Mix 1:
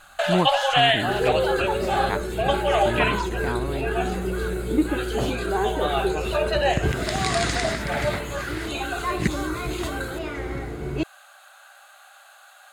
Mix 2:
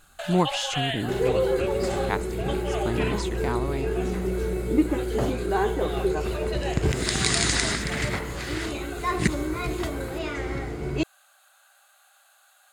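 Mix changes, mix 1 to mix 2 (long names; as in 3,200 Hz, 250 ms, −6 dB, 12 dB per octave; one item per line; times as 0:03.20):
first sound −12.0 dB
master: add high-shelf EQ 4,900 Hz +10 dB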